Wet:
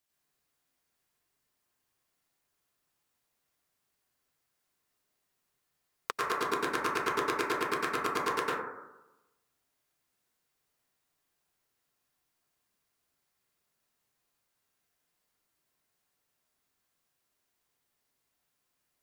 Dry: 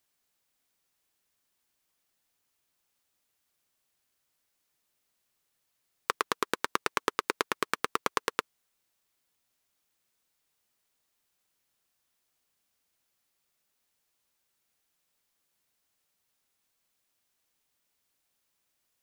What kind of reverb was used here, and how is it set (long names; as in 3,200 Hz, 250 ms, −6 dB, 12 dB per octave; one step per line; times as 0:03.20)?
dense smooth reverb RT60 1 s, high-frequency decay 0.25×, pre-delay 85 ms, DRR −5.5 dB
level −6 dB